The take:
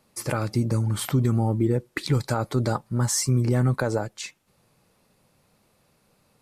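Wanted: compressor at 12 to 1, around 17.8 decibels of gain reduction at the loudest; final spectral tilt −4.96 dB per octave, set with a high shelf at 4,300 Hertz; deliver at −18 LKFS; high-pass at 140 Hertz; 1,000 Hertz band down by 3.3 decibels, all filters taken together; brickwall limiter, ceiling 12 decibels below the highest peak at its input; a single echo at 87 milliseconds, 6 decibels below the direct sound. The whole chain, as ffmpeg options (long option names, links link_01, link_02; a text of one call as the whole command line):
ffmpeg -i in.wav -af "highpass=140,equalizer=frequency=1000:width_type=o:gain=-4,highshelf=frequency=4300:gain=-8,acompressor=threshold=-38dB:ratio=12,alimiter=level_in=11.5dB:limit=-24dB:level=0:latency=1,volume=-11.5dB,aecho=1:1:87:0.501,volume=26.5dB" out.wav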